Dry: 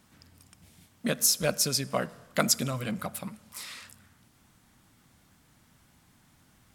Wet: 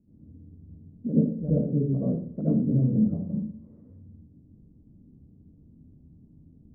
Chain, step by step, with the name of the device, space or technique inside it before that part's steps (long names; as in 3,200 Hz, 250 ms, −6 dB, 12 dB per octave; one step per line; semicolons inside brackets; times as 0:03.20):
next room (low-pass filter 360 Hz 24 dB per octave; convolution reverb RT60 0.45 s, pre-delay 69 ms, DRR −10 dB)